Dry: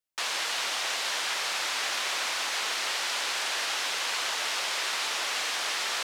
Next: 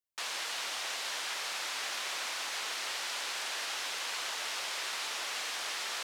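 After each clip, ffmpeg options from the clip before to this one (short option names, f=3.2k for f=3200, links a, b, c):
-af "highshelf=f=9.5k:g=3.5,volume=-7dB"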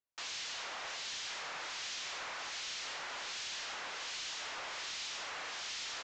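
-filter_complex "[0:a]acrossover=split=2200[a][b];[a]aeval=exprs='val(0)*(1-0.7/2+0.7/2*cos(2*PI*1.3*n/s))':c=same[c];[b]aeval=exprs='val(0)*(1-0.7/2-0.7/2*cos(2*PI*1.3*n/s))':c=same[d];[c][d]amix=inputs=2:normalize=0,aresample=16000,asoftclip=type=tanh:threshold=-38.5dB,aresample=44100,volume=1.5dB"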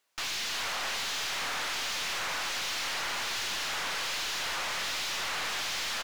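-filter_complex "[0:a]asplit=2[a][b];[b]highpass=f=720:p=1,volume=22dB,asoftclip=type=tanh:threshold=-32.5dB[c];[a][c]amix=inputs=2:normalize=0,lowpass=f=5.7k:p=1,volume=-6dB,aecho=1:1:363:0.531,aeval=exprs='(tanh(63.1*val(0)+0.4)-tanh(0.4))/63.1':c=same,volume=7dB"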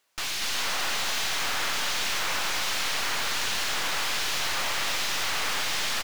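-af "aeval=exprs='clip(val(0),-1,0.00708)':c=same,acrusher=bits=3:mode=log:mix=0:aa=0.000001,aecho=1:1:239:0.631,volume=4.5dB"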